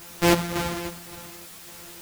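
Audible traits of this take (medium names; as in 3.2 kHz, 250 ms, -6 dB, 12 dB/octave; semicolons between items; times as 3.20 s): a buzz of ramps at a fixed pitch in blocks of 256 samples; chopped level 1.8 Hz, depth 65%, duty 60%; a quantiser's noise floor 8-bit, dither triangular; a shimmering, thickened sound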